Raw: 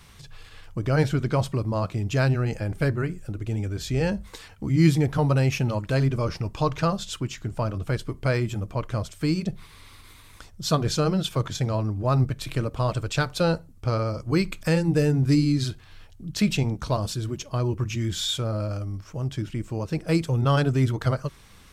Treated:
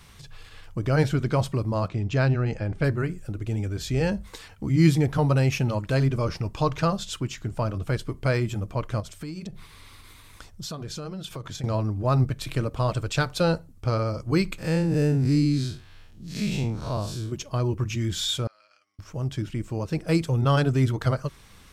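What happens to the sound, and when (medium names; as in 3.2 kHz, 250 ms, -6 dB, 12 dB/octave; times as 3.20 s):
1.88–2.84 s: distance through air 98 m
9.00–11.64 s: compression, threshold -32 dBFS
14.58–17.32 s: spectral blur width 124 ms
18.47–18.99 s: ladder band-pass 3 kHz, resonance 20%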